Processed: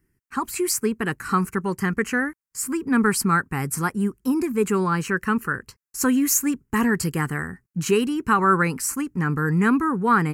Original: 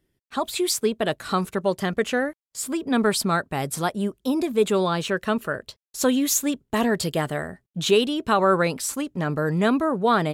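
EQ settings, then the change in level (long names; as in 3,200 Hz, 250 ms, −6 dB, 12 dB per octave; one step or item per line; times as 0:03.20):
phaser with its sweep stopped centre 1,500 Hz, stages 4
+4.5 dB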